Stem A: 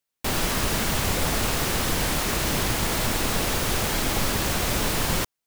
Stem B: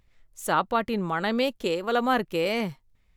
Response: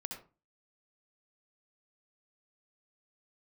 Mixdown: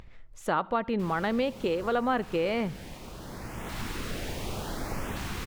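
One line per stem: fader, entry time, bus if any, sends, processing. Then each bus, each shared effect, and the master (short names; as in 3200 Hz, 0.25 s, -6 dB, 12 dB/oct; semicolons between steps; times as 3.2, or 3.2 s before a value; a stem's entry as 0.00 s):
-10.0 dB, 0.75 s, send -7 dB, LFO notch saw up 0.68 Hz 440–4900 Hz; auto duck -17 dB, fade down 1.35 s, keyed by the second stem
+2.5 dB, 0.00 s, send -18 dB, high shelf 7600 Hz -11 dB; upward compressor, threshold -41 dBFS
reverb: on, RT60 0.30 s, pre-delay 60 ms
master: high shelf 4700 Hz -11 dB; compressor 2:1, threshold -28 dBFS, peak gain reduction 7.5 dB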